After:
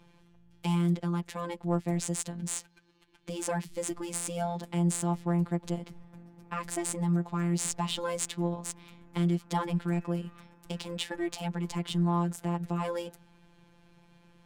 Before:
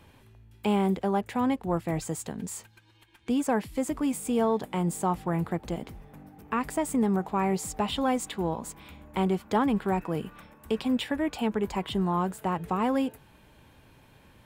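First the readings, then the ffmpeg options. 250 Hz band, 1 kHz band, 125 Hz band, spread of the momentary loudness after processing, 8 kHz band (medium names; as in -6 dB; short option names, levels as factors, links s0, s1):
-4.0 dB, -6.5 dB, +3.0 dB, 10 LU, +4.0 dB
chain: -af "bass=f=250:g=5,treble=f=4000:g=14,afftfilt=real='hypot(re,im)*cos(PI*b)':imag='0':win_size=1024:overlap=0.75,adynamicsmooth=sensitivity=5.5:basefreq=3600,volume=0.794"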